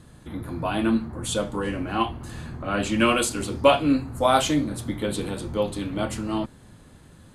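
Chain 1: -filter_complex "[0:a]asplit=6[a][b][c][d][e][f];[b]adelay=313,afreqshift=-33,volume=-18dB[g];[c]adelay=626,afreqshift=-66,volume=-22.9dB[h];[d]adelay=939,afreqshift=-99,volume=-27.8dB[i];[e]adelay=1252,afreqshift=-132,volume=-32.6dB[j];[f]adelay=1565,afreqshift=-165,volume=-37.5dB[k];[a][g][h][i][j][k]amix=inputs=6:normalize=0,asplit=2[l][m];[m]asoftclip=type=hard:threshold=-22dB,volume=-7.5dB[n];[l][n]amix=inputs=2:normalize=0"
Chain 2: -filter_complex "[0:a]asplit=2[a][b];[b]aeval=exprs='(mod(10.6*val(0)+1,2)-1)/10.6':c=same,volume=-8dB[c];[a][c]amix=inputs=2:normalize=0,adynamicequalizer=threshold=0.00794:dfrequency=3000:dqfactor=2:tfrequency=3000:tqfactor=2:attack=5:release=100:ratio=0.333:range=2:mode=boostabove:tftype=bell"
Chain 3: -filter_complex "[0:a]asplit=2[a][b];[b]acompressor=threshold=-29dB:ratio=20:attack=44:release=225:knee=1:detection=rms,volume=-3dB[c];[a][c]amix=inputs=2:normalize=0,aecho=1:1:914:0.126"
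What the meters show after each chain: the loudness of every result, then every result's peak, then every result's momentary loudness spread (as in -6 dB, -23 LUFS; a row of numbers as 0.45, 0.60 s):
-22.5, -23.5, -23.0 LUFS; -3.5, -3.0, -3.0 dBFS; 13, 11, 14 LU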